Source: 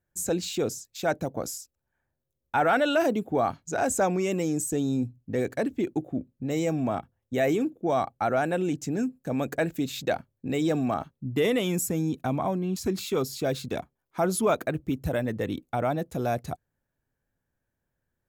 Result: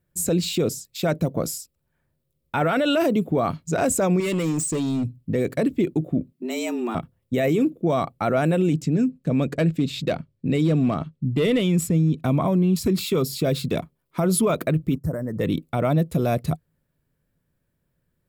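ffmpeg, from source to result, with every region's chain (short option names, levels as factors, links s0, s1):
-filter_complex "[0:a]asettb=1/sr,asplit=3[s0][s1][s2];[s0]atrim=end=4.204[s3];[s1]atrim=start=4.2:end=5.05,asetpts=PTS-STARTPTS,afade=t=in:d=0.004:c=qsin,afade=t=out:st=0.846:d=0.004:c=qsin,lowpass=f=8400:w=0.5412,lowpass=f=8400:w=1.3066,tiltshelf=f=710:g=-3.5,asoftclip=type=hard:threshold=0.0355[s4];[s2]atrim=start=5.046[s5];[s3][s4]acrossfade=d=0.004:c1=hsin:c2=qsin[s6];[s6][s5]acrossfade=d=0.004:c1=qsin:c2=hsin,asettb=1/sr,asplit=3[s7][s8][s9];[s7]atrim=end=6.334[s10];[s8]atrim=start=6.33:end=6.95,asetpts=PTS-STARTPTS,afade=t=in:d=0.004:c=qsin,afade=t=out:st=0.616:d=0.004:c=qsin,equalizer=f=380:t=o:w=1.5:g=-13,afreqshift=120[s11];[s9]atrim=start=6.946[s12];[s10][s11]acrossfade=d=0.004:c1=hsin:c2=qsin[s13];[s13][s12]acrossfade=d=0.004:c1=qsin:c2=hsin,asettb=1/sr,asplit=3[s14][s15][s16];[s14]atrim=end=8.824[s17];[s15]atrim=start=8.82:end=12.23,asetpts=PTS-STARTPTS,afade=t=in:d=0.004:c=qsin,afade=t=out:st=3.406:d=0.004:c=qsin,equalizer=f=930:t=o:w=2.5:g=-4,adynamicsmooth=sensitivity=3:basefreq=6400,asoftclip=type=hard:threshold=0.0841[s18];[s16]atrim=start=12.226[s19];[s17][s18]acrossfade=d=0.004:c1=hsin:c2=qsin[s20];[s20][s19]acrossfade=d=0.004:c1=qsin:c2=hsin,asettb=1/sr,asplit=3[s21][s22][s23];[s21]atrim=end=14.954[s24];[s22]atrim=start=14.95:end=15.4,asetpts=PTS-STARTPTS,afade=t=in:d=0.004:c=qsin,afade=t=out:st=0.446:d=0.004:c=qsin,acompressor=threshold=0.0224:ratio=4:attack=3.2:release=140:knee=1:detection=peak,asuperstop=centerf=3000:order=8:qfactor=0.99,agate=range=0.2:threshold=0.00631:ratio=16:release=100:detection=peak[s25];[s23]atrim=start=15.396[s26];[s24][s25]acrossfade=d=0.004:c1=hsin:c2=qsin[s27];[s27][s26]acrossfade=d=0.004:c1=qsin:c2=hsin,equalizer=f=160:t=o:w=0.33:g=9,equalizer=f=800:t=o:w=0.33:g=-10,equalizer=f=1600:t=o:w=0.33:g=-7,equalizer=f=6300:t=o:w=0.33:g=-8,alimiter=limit=0.0944:level=0:latency=1,volume=2.37"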